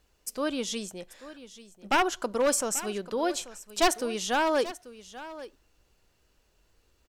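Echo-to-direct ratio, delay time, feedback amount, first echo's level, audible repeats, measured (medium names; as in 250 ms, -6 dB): -16.0 dB, 837 ms, no regular repeats, -16.0 dB, 1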